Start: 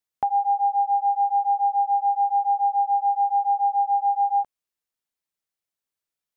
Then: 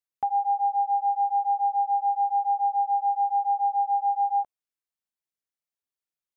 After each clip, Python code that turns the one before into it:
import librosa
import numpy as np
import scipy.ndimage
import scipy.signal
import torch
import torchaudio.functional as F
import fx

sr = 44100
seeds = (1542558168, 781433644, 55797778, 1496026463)

y = fx.dynamic_eq(x, sr, hz=730.0, q=1.3, threshold_db=-33.0, ratio=4.0, max_db=5)
y = y * librosa.db_to_amplitude(-7.5)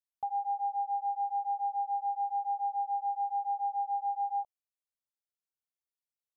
y = fx.fixed_phaser(x, sr, hz=710.0, stages=4)
y = y * librosa.db_to_amplitude(-8.0)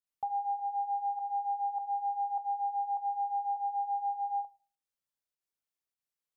y = fx.volume_shaper(x, sr, bpm=101, per_beat=1, depth_db=-11, release_ms=136.0, shape='fast start')
y = fx.room_shoebox(y, sr, seeds[0], volume_m3=240.0, walls='furnished', distance_m=0.38)
y = y * librosa.db_to_amplitude(1.0)